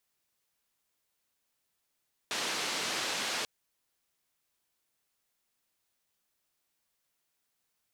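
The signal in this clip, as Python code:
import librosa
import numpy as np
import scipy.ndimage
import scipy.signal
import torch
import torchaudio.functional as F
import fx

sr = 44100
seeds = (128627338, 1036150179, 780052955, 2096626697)

y = fx.band_noise(sr, seeds[0], length_s=1.14, low_hz=220.0, high_hz=5200.0, level_db=-34.0)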